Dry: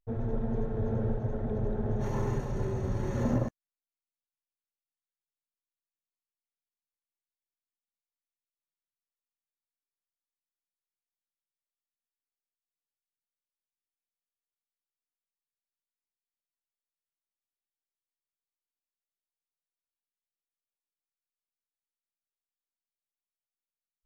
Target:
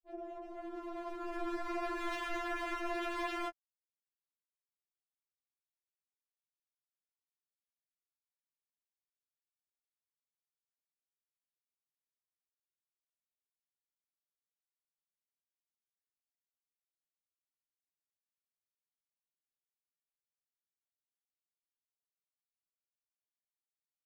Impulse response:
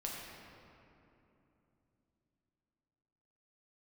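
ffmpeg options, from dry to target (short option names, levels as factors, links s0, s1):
-af "afftfilt=real='re*gte(hypot(re,im),0.00794)':imag='im*gte(hypot(re,im),0.00794)':win_size=1024:overlap=0.75,afwtdn=0.00501,highpass=f=190:p=1,alimiter=level_in=2.24:limit=0.0631:level=0:latency=1:release=10,volume=0.447,dynaudnorm=f=140:g=21:m=3.98,aeval=exprs='0.0266*(abs(mod(val(0)/0.0266+3,4)-2)-1)':c=same,afftfilt=real='re*4*eq(mod(b,16),0)':imag='im*4*eq(mod(b,16),0)':win_size=2048:overlap=0.75,volume=1.12"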